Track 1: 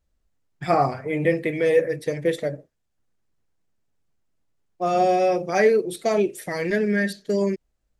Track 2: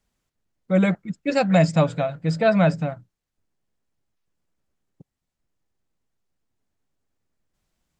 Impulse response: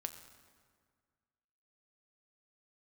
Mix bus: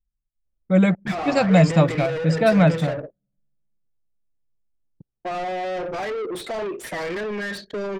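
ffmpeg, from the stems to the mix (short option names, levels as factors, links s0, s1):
-filter_complex "[0:a]alimiter=limit=0.15:level=0:latency=1:release=186,acompressor=threshold=0.0355:ratio=6,asplit=2[s0][s1];[s1]highpass=f=720:p=1,volume=31.6,asoftclip=type=tanh:threshold=0.133[s2];[s0][s2]amix=inputs=2:normalize=0,lowpass=f=2400:p=1,volume=0.501,adelay=450,volume=0.631,asplit=2[s3][s4];[s4]volume=0.133[s5];[1:a]bass=f=250:g=3,treble=f=4000:g=1,volume=1,asplit=2[s6][s7];[s7]volume=0.0944[s8];[2:a]atrim=start_sample=2205[s9];[s5][s8]amix=inputs=2:normalize=0[s10];[s10][s9]afir=irnorm=-1:irlink=0[s11];[s3][s6][s11]amix=inputs=3:normalize=0,anlmdn=1.58"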